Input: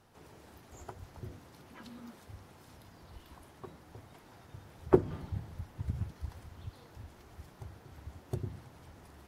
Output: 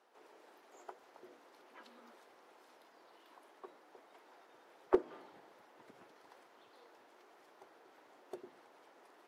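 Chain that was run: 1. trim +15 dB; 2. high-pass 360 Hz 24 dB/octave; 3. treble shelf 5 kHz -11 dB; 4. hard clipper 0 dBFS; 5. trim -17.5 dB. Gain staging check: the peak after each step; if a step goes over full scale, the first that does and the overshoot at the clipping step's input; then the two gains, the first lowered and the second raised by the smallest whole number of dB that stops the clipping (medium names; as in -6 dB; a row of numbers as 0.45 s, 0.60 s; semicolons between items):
+6.0 dBFS, +3.5 dBFS, +3.5 dBFS, 0.0 dBFS, -17.5 dBFS; step 1, 3.5 dB; step 1 +11 dB, step 5 -13.5 dB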